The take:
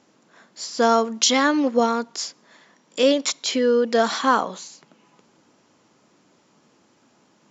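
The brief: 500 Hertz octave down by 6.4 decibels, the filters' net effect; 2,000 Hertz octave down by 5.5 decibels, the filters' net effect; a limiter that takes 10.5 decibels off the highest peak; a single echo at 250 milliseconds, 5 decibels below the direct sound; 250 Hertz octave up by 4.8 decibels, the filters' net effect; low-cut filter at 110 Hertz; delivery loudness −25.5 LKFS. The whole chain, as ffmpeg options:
ffmpeg -i in.wav -af "highpass=110,equalizer=frequency=250:width_type=o:gain=7.5,equalizer=frequency=500:width_type=o:gain=-8.5,equalizer=frequency=2000:width_type=o:gain=-7,alimiter=limit=-15.5dB:level=0:latency=1,aecho=1:1:250:0.562,volume=-2dB" out.wav

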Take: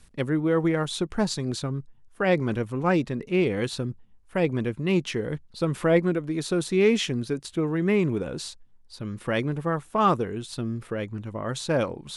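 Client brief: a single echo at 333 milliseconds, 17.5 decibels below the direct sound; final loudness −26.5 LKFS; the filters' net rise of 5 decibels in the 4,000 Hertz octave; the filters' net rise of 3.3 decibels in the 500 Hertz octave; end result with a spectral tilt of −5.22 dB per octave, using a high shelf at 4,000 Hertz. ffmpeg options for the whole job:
ffmpeg -i in.wav -af "equalizer=frequency=500:width_type=o:gain=4,highshelf=frequency=4000:gain=5.5,equalizer=frequency=4000:width_type=o:gain=3,aecho=1:1:333:0.133,volume=-2.5dB" out.wav

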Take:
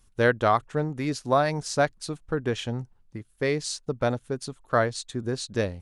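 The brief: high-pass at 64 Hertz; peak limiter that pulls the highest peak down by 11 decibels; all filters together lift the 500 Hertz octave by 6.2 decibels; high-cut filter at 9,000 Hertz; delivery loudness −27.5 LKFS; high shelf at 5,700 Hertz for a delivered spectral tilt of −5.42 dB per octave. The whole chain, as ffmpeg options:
ffmpeg -i in.wav -af "highpass=64,lowpass=9000,equalizer=frequency=500:width_type=o:gain=7.5,highshelf=frequency=5700:gain=-7,volume=0.5dB,alimiter=limit=-15dB:level=0:latency=1" out.wav

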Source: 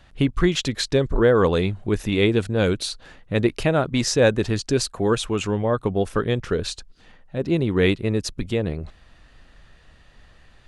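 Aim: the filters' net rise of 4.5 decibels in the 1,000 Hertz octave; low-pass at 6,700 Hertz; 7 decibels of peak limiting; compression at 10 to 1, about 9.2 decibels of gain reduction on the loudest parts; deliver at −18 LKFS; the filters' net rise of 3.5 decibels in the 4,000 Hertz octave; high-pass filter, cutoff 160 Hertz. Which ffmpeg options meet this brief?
ffmpeg -i in.wav -af "highpass=160,lowpass=6700,equalizer=frequency=1000:width_type=o:gain=5.5,equalizer=frequency=4000:width_type=o:gain=4.5,acompressor=threshold=-20dB:ratio=10,volume=10dB,alimiter=limit=-5.5dB:level=0:latency=1" out.wav

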